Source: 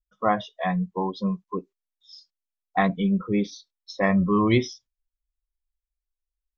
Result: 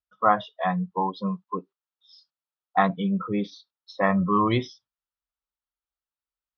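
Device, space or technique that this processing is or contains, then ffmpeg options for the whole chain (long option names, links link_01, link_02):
guitar cabinet: -af "highpass=110,equalizer=frequency=230:width_type=q:width=4:gain=-5,equalizer=frequency=370:width_type=q:width=4:gain=-5,equalizer=frequency=890:width_type=q:width=4:gain=5,equalizer=frequency=1300:width_type=q:width=4:gain=8,equalizer=frequency=2200:width_type=q:width=4:gain=-6,lowpass=frequency=4400:width=0.5412,lowpass=frequency=4400:width=1.3066"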